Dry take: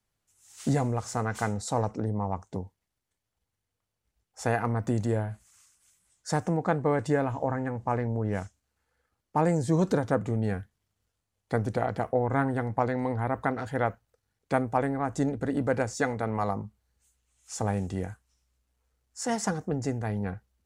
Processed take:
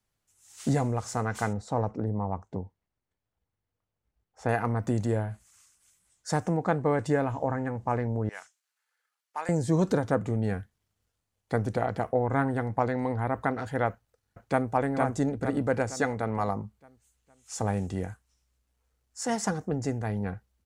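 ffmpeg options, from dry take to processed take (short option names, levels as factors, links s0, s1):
-filter_complex "[0:a]asettb=1/sr,asplit=3[s0][s1][s2];[s0]atrim=end=1.534[s3];[s1]atrim=start=1.53:end=4.49,asetpts=PTS-STARTPTS,afade=t=in:d=0.004:c=qsin,afade=t=out:st=2.956:d=0.004:c=qsin,lowpass=f=1500:p=1[s4];[s2]atrim=start=4.486[s5];[s3][s4]acrossfade=d=0.004:c1=hsin:c2=qsin[s6];[s6][s5]acrossfade=d=0.004:c1=qsin:c2=hsin,asettb=1/sr,asplit=3[s7][s8][s9];[s7]atrim=end=8.294[s10];[s8]atrim=start=8.29:end=9.49,asetpts=PTS-STARTPTS,afade=t=in:d=0.004:c=qsin,afade=t=out:st=1.196:d=0.004:c=qsin,highpass=1300[s11];[s9]atrim=start=9.486[s12];[s10][s11]acrossfade=d=0.004:c1=hsin:c2=qsin[s13];[s13][s12]acrossfade=d=0.004:c1=qsin:c2=hsin,asplit=2[s14][s15];[s15]afade=t=in:st=13.9:d=0.01,afade=t=out:st=14.7:d=0.01,aecho=0:1:460|920|1380|1840|2300|2760:0.749894|0.337452|0.151854|0.0683341|0.0307503|0.0138377[s16];[s14][s16]amix=inputs=2:normalize=0"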